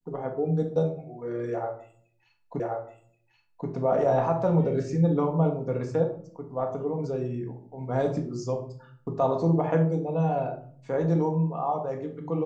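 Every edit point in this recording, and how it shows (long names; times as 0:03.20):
0:02.60: the same again, the last 1.08 s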